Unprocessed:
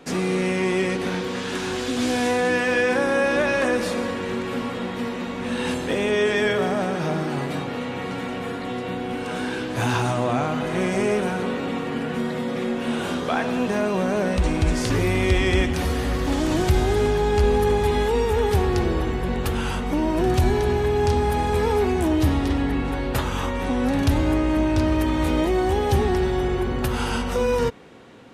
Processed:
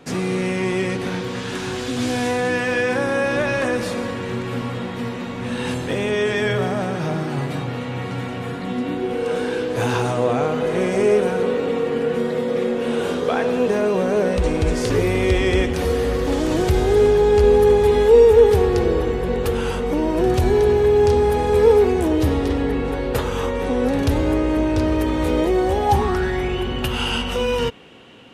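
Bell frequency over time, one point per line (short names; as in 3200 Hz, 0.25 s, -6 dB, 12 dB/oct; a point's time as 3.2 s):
bell +13.5 dB 0.34 oct
8.46 s 120 Hz
9.14 s 460 Hz
25.62 s 460 Hz
26.56 s 2900 Hz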